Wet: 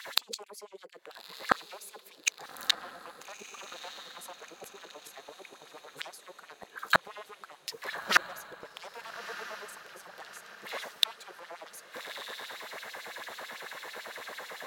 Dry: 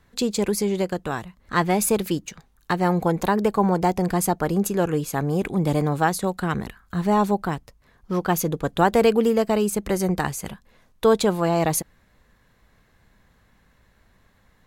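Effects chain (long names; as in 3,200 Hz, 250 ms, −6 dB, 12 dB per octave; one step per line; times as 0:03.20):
sine wavefolder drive 13 dB, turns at −6 dBFS
mains-hum notches 50/100/150/200/250/300/350/400/450/500 Hz
auto-filter high-pass sine 9 Hz 440–4,100 Hz
gate with flip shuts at −9 dBFS, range −40 dB
on a send: feedback delay with all-pass diffusion 1,269 ms, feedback 50%, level −13.5 dB
on the sum: level +3 dB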